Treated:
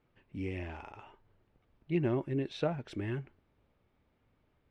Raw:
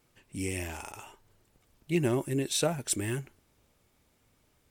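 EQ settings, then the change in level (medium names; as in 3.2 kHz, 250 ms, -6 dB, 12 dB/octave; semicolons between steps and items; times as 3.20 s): distance through air 310 m; treble shelf 7.8 kHz -9 dB; -2.5 dB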